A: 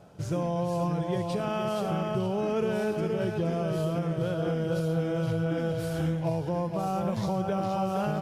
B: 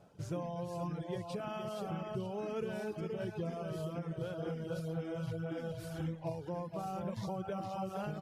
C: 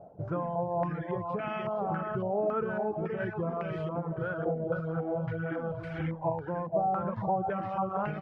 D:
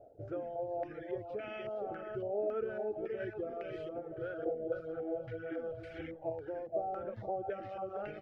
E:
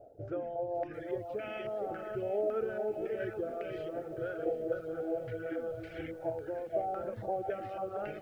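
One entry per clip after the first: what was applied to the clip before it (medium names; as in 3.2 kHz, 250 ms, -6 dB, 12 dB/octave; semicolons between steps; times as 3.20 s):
reverb removal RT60 0.99 s; trim -8 dB
step-sequenced low-pass 3.6 Hz 690–2100 Hz; trim +4.5 dB
static phaser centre 420 Hz, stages 4; trim -3 dB
bit-crushed delay 744 ms, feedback 55%, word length 10-bit, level -14.5 dB; trim +2.5 dB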